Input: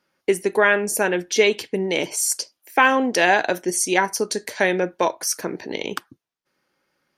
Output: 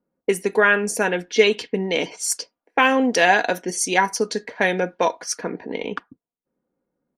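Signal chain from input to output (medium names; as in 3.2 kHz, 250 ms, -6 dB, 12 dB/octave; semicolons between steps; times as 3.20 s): 1.55–2.19 s: low-pass 6.8 kHz 12 dB/octave; level-controlled noise filter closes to 490 Hz, open at -17 dBFS; comb 4.2 ms, depth 41%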